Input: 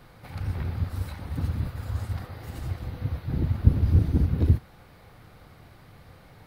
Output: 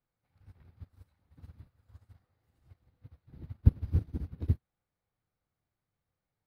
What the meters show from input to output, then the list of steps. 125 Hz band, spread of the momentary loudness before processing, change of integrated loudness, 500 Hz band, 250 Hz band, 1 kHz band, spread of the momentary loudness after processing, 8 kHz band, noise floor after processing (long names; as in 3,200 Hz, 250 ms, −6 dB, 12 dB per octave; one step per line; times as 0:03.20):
−9.5 dB, 13 LU, −4.5 dB, −14.0 dB, −11.0 dB, below −20 dB, 12 LU, can't be measured, below −85 dBFS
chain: expander for the loud parts 2.5 to 1, over −34 dBFS
level −3.5 dB